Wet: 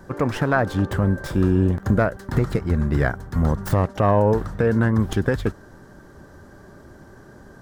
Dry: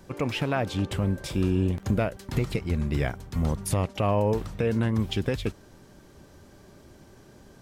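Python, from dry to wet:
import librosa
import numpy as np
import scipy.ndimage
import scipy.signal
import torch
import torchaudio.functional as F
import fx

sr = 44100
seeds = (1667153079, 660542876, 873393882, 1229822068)

y = fx.tracing_dist(x, sr, depth_ms=0.15)
y = fx.high_shelf_res(y, sr, hz=2000.0, db=-6.0, q=3.0)
y = y * librosa.db_to_amplitude(6.0)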